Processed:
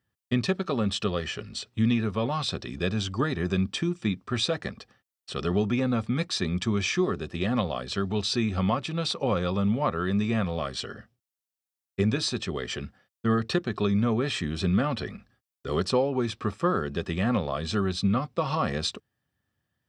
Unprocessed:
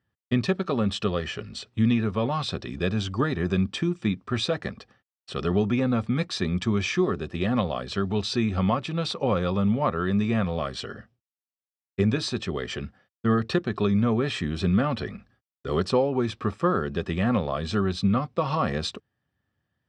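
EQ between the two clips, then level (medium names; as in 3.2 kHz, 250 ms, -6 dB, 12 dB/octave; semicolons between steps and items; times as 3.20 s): treble shelf 4.4 kHz +8 dB; -2.0 dB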